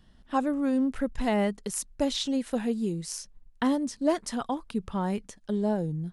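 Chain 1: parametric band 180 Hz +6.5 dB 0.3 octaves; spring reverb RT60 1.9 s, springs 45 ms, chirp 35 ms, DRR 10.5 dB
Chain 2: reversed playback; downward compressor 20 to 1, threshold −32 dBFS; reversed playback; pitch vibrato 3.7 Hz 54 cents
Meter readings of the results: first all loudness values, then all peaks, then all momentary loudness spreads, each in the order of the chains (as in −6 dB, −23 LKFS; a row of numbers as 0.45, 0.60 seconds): −28.5, −37.5 LKFS; −12.5, −19.0 dBFS; 6, 4 LU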